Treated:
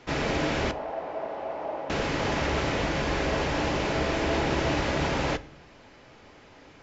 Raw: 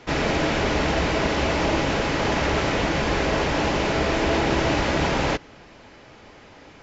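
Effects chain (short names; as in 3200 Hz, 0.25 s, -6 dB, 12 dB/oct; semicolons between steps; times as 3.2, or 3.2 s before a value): 0.71–1.9 band-pass 700 Hz, Q 2.5; on a send: reverb, pre-delay 7 ms, DRR 14 dB; on the sum: gain -5 dB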